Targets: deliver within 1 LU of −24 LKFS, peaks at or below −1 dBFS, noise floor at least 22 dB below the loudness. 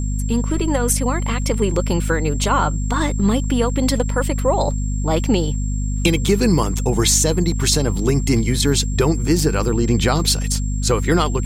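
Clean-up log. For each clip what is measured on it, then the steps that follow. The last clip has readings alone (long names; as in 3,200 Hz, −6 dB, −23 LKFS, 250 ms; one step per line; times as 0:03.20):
mains hum 50 Hz; hum harmonics up to 250 Hz; level of the hum −19 dBFS; interfering tone 7,500 Hz; level of the tone −35 dBFS; integrated loudness −18.5 LKFS; sample peak −3.0 dBFS; target loudness −24.0 LKFS
→ hum removal 50 Hz, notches 5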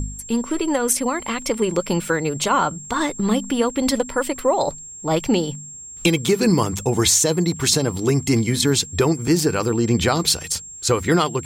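mains hum none found; interfering tone 7,500 Hz; level of the tone −35 dBFS
→ notch filter 7,500 Hz, Q 30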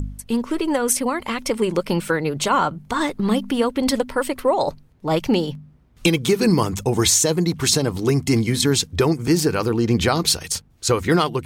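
interfering tone none found; integrated loudness −20.5 LKFS; sample peak −4.5 dBFS; target loudness −24.0 LKFS
→ level −3.5 dB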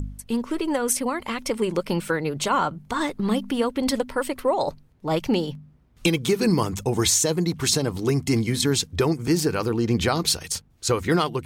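integrated loudness −24.0 LKFS; sample peak −8.0 dBFS; background noise floor −55 dBFS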